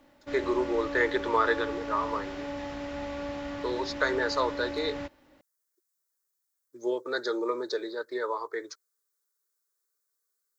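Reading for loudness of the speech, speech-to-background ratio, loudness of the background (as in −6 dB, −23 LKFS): −30.5 LKFS, 6.0 dB, −36.5 LKFS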